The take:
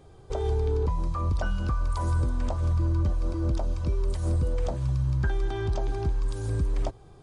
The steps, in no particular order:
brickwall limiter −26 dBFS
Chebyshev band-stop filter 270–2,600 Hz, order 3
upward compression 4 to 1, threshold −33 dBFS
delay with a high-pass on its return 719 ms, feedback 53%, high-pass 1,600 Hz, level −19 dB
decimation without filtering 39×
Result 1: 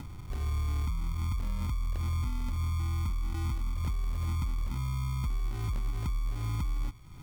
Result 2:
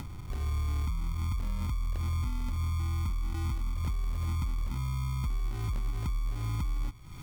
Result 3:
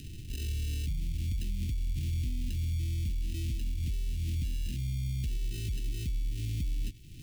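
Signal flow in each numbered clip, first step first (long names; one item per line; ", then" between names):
upward compression, then Chebyshev band-stop filter, then decimation without filtering, then delay with a high-pass on its return, then brickwall limiter
Chebyshev band-stop filter, then decimation without filtering, then delay with a high-pass on its return, then brickwall limiter, then upward compression
decimation without filtering, then upward compression, then delay with a high-pass on its return, then brickwall limiter, then Chebyshev band-stop filter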